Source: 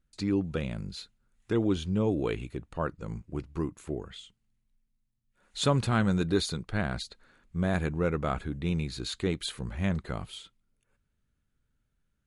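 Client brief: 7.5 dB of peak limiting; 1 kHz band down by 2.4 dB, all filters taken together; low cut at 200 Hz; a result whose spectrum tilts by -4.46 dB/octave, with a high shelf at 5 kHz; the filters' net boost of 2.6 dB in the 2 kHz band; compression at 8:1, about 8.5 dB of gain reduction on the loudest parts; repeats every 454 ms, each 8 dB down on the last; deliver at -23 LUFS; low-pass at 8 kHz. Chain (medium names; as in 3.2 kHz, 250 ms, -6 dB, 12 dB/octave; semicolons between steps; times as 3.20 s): high-pass 200 Hz; low-pass 8 kHz; peaking EQ 1 kHz -5.5 dB; peaking EQ 2 kHz +5 dB; treble shelf 5 kHz +4.5 dB; compression 8:1, threshold -30 dBFS; peak limiter -25 dBFS; feedback delay 454 ms, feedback 40%, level -8 dB; trim +15 dB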